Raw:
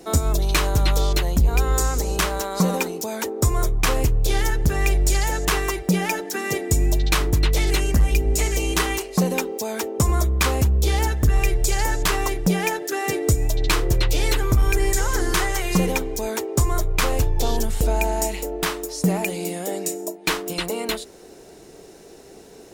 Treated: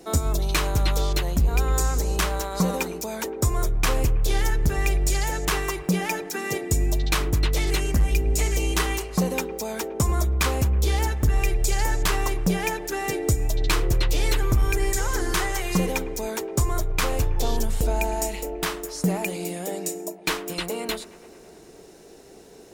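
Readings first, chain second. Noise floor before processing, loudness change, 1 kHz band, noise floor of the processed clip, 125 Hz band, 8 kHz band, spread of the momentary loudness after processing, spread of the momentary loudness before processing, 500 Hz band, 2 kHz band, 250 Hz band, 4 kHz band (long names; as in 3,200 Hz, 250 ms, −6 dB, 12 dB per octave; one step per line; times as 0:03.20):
−44 dBFS, −3.0 dB, −3.0 dB, −47 dBFS, −2.5 dB, −3.0 dB, 6 LU, 6 LU, −3.0 dB, −3.0 dB, −3.0 dB, −3.0 dB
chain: bucket-brigade delay 108 ms, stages 2,048, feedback 76%, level −19.5 dB
level −3 dB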